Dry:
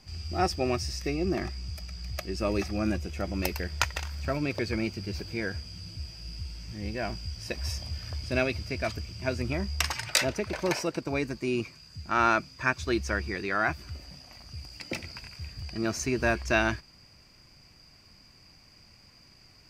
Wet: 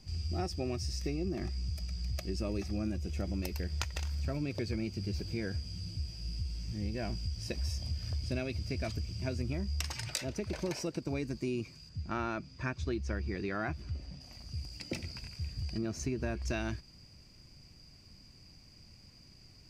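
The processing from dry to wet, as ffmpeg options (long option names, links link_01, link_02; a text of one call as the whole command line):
ffmpeg -i in.wav -filter_complex "[0:a]asettb=1/sr,asplit=3[link_01][link_02][link_03];[link_01]atrim=end=11.894[link_04];[link_02]atrim=start=11.89:end=14.21,asetpts=PTS-STARTPTS,afade=type=in:duration=0.004:curve=qsin,afade=type=out:start_time=2.316:duration=0.004:curve=qsin,aemphasis=mode=reproduction:type=50fm[link_05];[link_03]atrim=start=14.206[link_06];[link_04][link_05]acrossfade=duration=0.004:curve1=hsin:curve2=qsin[link_07];[link_07][link_06]acrossfade=duration=0.004:curve1=qsin:curve2=hsin,asettb=1/sr,asplit=3[link_08][link_09][link_10];[link_08]atrim=end=15.784[link_11];[link_09]atrim=start=15.78:end=16.42,asetpts=PTS-STARTPTS,afade=type=in:duration=0.004:curve=qsin,afade=type=out:start_time=0.636:duration=0.004:curve=qsin,highshelf=frequency=3600:gain=-7[link_12];[link_10]atrim=start=16.416[link_13];[link_11][link_12]acrossfade=duration=0.004:curve1=hsin:curve2=qsin[link_14];[link_14][link_13]acrossfade=duration=0.004:curve1=qsin:curve2=hsin,equalizer=frequency=1300:width_type=o:width=3:gain=-11.5,acompressor=threshold=-34dB:ratio=6,highshelf=frequency=11000:gain=-11.5,volume=3dB" out.wav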